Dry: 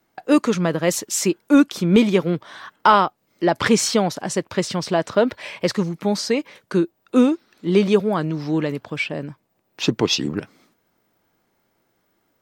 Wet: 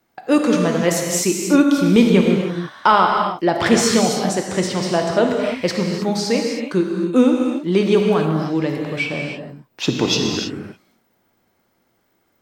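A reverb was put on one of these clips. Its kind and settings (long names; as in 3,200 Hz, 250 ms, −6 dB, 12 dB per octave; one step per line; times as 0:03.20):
reverb whose tail is shaped and stops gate 340 ms flat, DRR 1 dB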